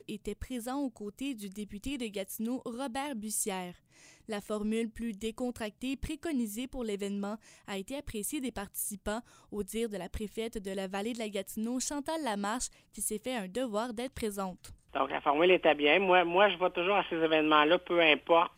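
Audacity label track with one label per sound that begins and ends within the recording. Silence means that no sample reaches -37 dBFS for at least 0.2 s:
4.290000	7.350000	sound
7.680000	9.200000	sound
9.530000	12.670000	sound
12.980000	14.650000	sound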